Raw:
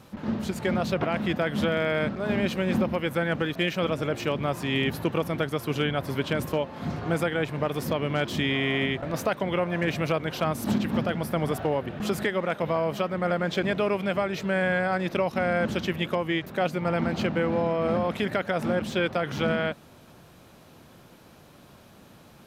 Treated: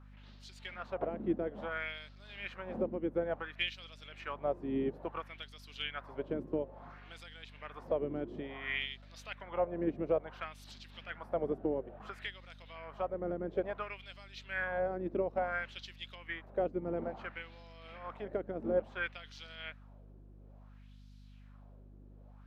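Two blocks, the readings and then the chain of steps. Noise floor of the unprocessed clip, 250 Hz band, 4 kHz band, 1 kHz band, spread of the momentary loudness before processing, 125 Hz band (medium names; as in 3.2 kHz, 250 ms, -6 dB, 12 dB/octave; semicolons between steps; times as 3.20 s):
-52 dBFS, -13.5 dB, -11.5 dB, -12.0 dB, 3 LU, -18.5 dB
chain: LFO band-pass sine 0.58 Hz 320–4600 Hz; hum 50 Hz, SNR 11 dB; upward expansion 1.5:1, over -41 dBFS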